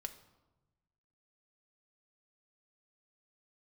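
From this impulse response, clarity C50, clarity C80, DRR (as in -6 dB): 12.5 dB, 15.0 dB, 6.5 dB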